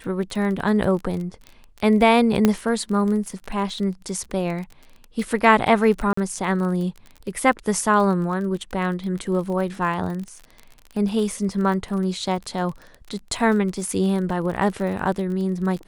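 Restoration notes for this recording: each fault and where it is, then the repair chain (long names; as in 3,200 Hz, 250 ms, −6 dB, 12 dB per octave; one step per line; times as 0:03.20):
surface crackle 29 per second −29 dBFS
0:02.45: click −4 dBFS
0:06.13–0:06.17: drop-out 44 ms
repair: click removal
repair the gap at 0:06.13, 44 ms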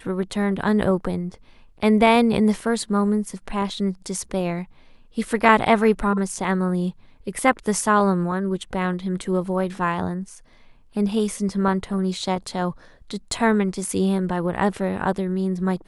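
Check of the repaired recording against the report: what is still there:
none of them is left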